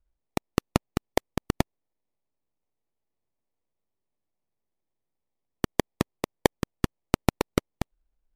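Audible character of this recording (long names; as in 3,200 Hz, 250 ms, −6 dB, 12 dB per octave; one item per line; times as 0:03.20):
aliases and images of a low sample rate 1,500 Hz, jitter 20%
MP3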